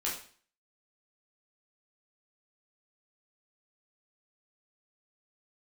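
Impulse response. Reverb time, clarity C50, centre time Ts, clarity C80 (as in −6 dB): 0.45 s, 5.5 dB, 36 ms, 10.0 dB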